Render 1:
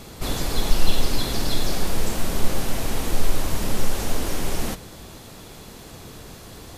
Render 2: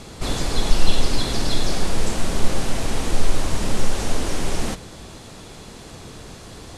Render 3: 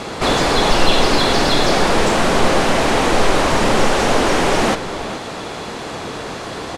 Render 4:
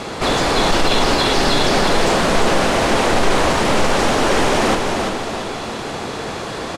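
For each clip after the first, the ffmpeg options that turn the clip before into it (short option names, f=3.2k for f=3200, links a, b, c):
-af "lowpass=f=10k:w=0.5412,lowpass=f=10k:w=1.3066,volume=2dB"
-filter_complex "[0:a]asplit=2[a][b];[b]adelay=419.8,volume=-13dB,highshelf=f=4k:g=-9.45[c];[a][c]amix=inputs=2:normalize=0,asplit=2[d][e];[e]highpass=f=720:p=1,volume=24dB,asoftclip=type=tanh:threshold=-1dB[f];[d][f]amix=inputs=2:normalize=0,lowpass=f=1.4k:p=1,volume=-6dB,volume=2dB"
-af "asoftclip=type=tanh:threshold=-9dB,aecho=1:1:343|686|1029|1372|1715:0.562|0.242|0.104|0.0447|0.0192"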